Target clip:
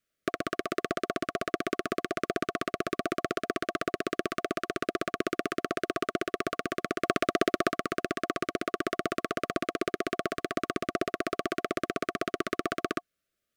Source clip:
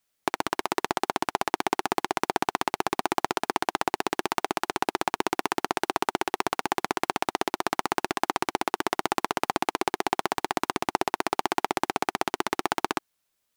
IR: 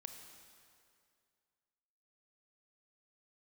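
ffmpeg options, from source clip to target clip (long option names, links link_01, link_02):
-filter_complex "[0:a]asuperstop=centerf=890:order=20:qfactor=2.2,highshelf=frequency=2700:gain=-10,asplit=3[link_01][link_02][link_03];[link_01]afade=type=out:start_time=7.03:duration=0.02[link_04];[link_02]acontrast=33,afade=type=in:start_time=7.03:duration=0.02,afade=type=out:start_time=7.7:duration=0.02[link_05];[link_03]afade=type=in:start_time=7.7:duration=0.02[link_06];[link_04][link_05][link_06]amix=inputs=3:normalize=0"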